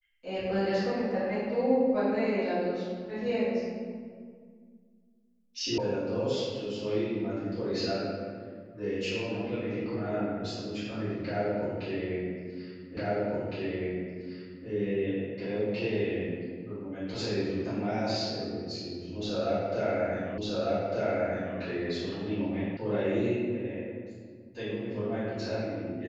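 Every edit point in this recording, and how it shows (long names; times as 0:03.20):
0:05.78: cut off before it has died away
0:12.97: the same again, the last 1.71 s
0:20.38: the same again, the last 1.2 s
0:22.77: cut off before it has died away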